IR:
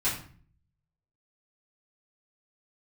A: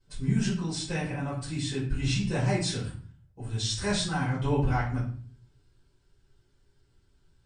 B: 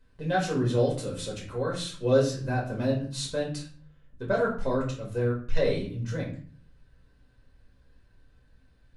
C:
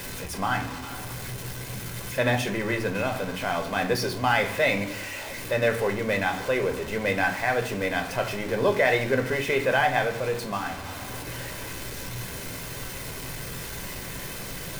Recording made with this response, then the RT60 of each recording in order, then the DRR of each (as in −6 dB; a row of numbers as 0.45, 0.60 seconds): A; 0.45, 0.45, 0.45 seconds; −11.5, −5.0, 4.0 decibels